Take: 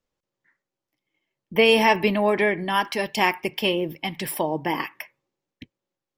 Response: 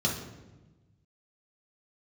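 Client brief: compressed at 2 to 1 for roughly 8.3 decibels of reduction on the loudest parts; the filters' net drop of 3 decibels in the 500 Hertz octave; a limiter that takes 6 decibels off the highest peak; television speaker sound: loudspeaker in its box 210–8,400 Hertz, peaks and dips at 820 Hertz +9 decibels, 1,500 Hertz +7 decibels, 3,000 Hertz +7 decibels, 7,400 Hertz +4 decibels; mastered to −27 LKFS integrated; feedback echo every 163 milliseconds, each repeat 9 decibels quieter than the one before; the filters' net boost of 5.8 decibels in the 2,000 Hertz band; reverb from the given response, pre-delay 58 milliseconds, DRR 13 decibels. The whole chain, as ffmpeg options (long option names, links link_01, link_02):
-filter_complex "[0:a]equalizer=frequency=500:width_type=o:gain=-5,equalizer=frequency=2000:width_type=o:gain=3.5,acompressor=threshold=-28dB:ratio=2,alimiter=limit=-18dB:level=0:latency=1,aecho=1:1:163|326|489|652:0.355|0.124|0.0435|0.0152,asplit=2[link_01][link_02];[1:a]atrim=start_sample=2205,adelay=58[link_03];[link_02][link_03]afir=irnorm=-1:irlink=0,volume=-21.5dB[link_04];[link_01][link_04]amix=inputs=2:normalize=0,highpass=frequency=210:width=0.5412,highpass=frequency=210:width=1.3066,equalizer=frequency=820:width_type=q:width=4:gain=9,equalizer=frequency=1500:width_type=q:width=4:gain=7,equalizer=frequency=3000:width_type=q:width=4:gain=7,equalizer=frequency=7400:width_type=q:width=4:gain=4,lowpass=frequency=8400:width=0.5412,lowpass=frequency=8400:width=1.3066,volume=-0.5dB"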